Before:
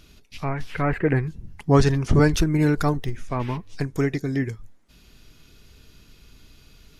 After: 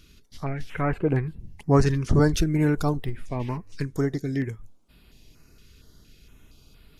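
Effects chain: step-sequenced notch 4.3 Hz 750–6200 Hz; trim -2 dB

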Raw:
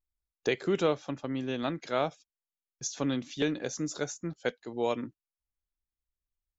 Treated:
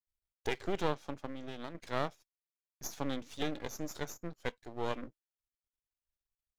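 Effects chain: half-wave rectifier; 1.27–1.75 s: compression 10:1, threshold -35 dBFS, peak gain reduction 9.5 dB; trim -2.5 dB

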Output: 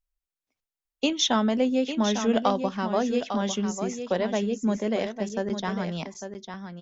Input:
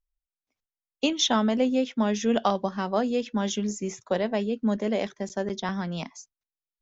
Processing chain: delay 851 ms -8.5 dB

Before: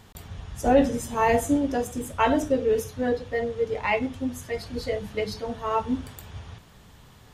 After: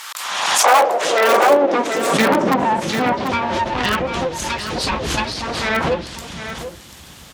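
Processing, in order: full-wave rectifier; treble shelf 2.2 kHz +10.5 dB; low-pass that closes with the level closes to 1.8 kHz, closed at -19.5 dBFS; in parallel at -9 dB: integer overflow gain 13.5 dB; on the sum: high-pass sweep 1.2 kHz -> 61 Hz, 0.06–3.86 s; dynamic bell 540 Hz, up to +4 dB, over -34 dBFS, Q 1.7; on a send: delay 740 ms -11 dB; on the sum: swell ahead of each attack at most 35 dB/s; trim +5.5 dB

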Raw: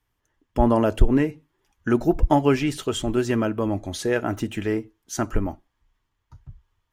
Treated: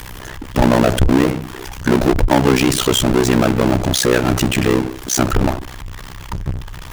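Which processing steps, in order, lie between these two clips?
power-law waveshaper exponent 0.35; AM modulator 64 Hz, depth 95%; trim +2 dB

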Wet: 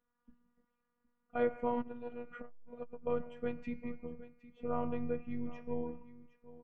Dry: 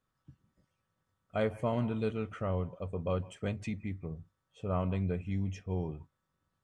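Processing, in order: low-pass 1.9 kHz 12 dB/octave; feedback comb 130 Hz, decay 1.3 s, harmonics odd, mix 70%; robot voice 241 Hz; comb 6.3 ms, depth 30%; delay 764 ms -17 dB; 1.81–3.07 s: transformer saturation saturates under 230 Hz; trim +10.5 dB

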